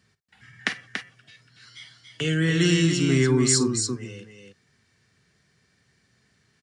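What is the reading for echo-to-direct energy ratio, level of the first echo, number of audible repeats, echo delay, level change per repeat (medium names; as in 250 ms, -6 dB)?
-5.0 dB, -15.5 dB, 2, 51 ms, no regular repeats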